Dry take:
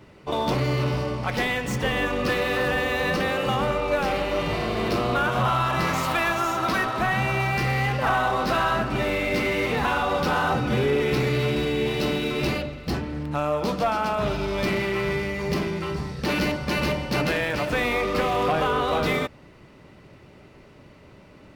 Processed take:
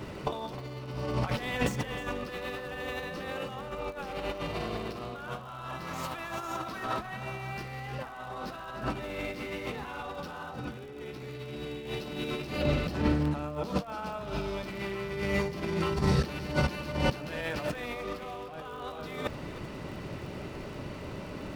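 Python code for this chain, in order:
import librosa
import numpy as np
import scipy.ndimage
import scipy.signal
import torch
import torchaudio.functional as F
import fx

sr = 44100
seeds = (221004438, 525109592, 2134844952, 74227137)

p1 = fx.peak_eq(x, sr, hz=2100.0, db=-3.0, octaves=0.43)
p2 = fx.over_compress(p1, sr, threshold_db=-32.0, ratio=-0.5)
p3 = fx.dmg_crackle(p2, sr, seeds[0], per_s=76.0, level_db=-44.0)
y = p3 + fx.echo_single(p3, sr, ms=310, db=-15.0, dry=0)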